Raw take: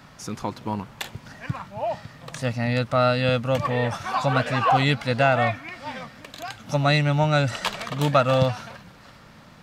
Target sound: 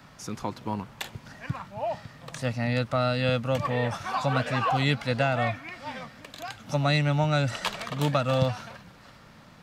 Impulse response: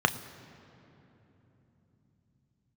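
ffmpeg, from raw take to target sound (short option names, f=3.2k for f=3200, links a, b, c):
-filter_complex "[0:a]acrossover=split=320|3000[a][b][c];[b]acompressor=threshold=-20dB:ratio=6[d];[a][d][c]amix=inputs=3:normalize=0,volume=-3dB"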